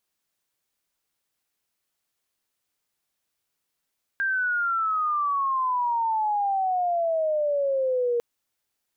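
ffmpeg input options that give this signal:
-f lavfi -i "aevalsrc='pow(10,(-22+1*t/4)/20)*sin(2*PI*1600*4/log(470/1600)*(exp(log(470/1600)*t/4)-1))':d=4:s=44100"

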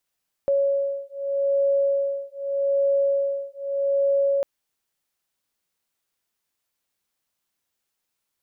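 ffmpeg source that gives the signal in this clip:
-f lavfi -i "aevalsrc='0.0708*(sin(2*PI*556*t)+sin(2*PI*556.82*t))':d=3.95:s=44100"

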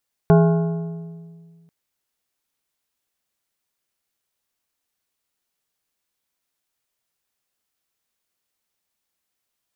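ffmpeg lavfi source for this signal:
-f lavfi -i "aevalsrc='0.335*pow(10,-3*t/1.99)*sin(2*PI*166*t)+0.2*pow(10,-3*t/1.512)*sin(2*PI*415*t)+0.119*pow(10,-3*t/1.313)*sin(2*PI*664*t)+0.0708*pow(10,-3*t/1.228)*sin(2*PI*830*t)+0.0422*pow(10,-3*t/1.135)*sin(2*PI*1079*t)+0.0251*pow(10,-3*t/1.047)*sin(2*PI*1411*t)+0.015*pow(10,-3*t/1.029)*sin(2*PI*1494*t)':d=1.39:s=44100"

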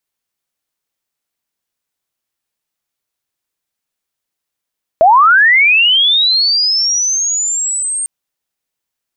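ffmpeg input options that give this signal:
-f lavfi -i "aevalsrc='pow(10,(-3.5-12*t/3.05)/20)*sin(2*PI*(620*t+8080*t*t/(2*3.05)))':d=3.05:s=44100"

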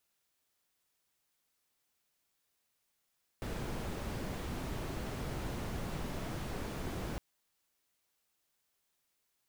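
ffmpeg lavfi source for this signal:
-f lavfi -i "anoisesrc=c=brown:a=0.0556:d=3.76:r=44100:seed=1"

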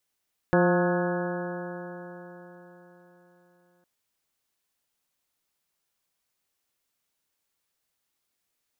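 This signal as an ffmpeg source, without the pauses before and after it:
-f lavfi -i "aevalsrc='0.0794*pow(10,-3*t/4.2)*sin(2*PI*175.14*t)+0.075*pow(10,-3*t/4.2)*sin(2*PI*351.12*t)+0.0794*pow(10,-3*t/4.2)*sin(2*PI*528.77*t)+0.0398*pow(10,-3*t/4.2)*sin(2*PI*708.9*t)+0.0299*pow(10,-3*t/4.2)*sin(2*PI*892.33*t)+0.0224*pow(10,-3*t/4.2)*sin(2*PI*1079.82*t)+0.0178*pow(10,-3*t/4.2)*sin(2*PI*1272.11*t)+0.0282*pow(10,-3*t/4.2)*sin(2*PI*1469.93*t)+0.0316*pow(10,-3*t/4.2)*sin(2*PI*1673.95*t)':d=3.31:s=44100"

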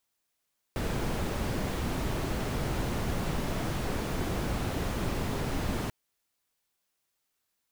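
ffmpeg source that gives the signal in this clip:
-f lavfi -i "anoisesrc=c=brown:a=0.14:d=5.14:r=44100:seed=1"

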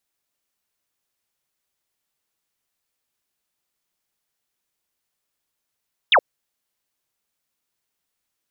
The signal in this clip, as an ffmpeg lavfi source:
-f lavfi -i "aevalsrc='0.299*clip(t/0.002,0,1)*clip((0.07-t)/0.002,0,1)*sin(2*PI*3900*0.07/log(460/3900)*(exp(log(460/3900)*t/0.07)-1))':d=0.07:s=44100"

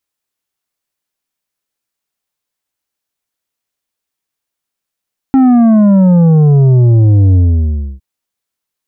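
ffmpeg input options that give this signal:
-f lavfi -i "aevalsrc='0.562*clip((2.66-t)/0.65,0,1)*tanh(2.37*sin(2*PI*270*2.66/log(65/270)*(exp(log(65/270)*t/2.66)-1)))/tanh(2.37)':d=2.66:s=44100"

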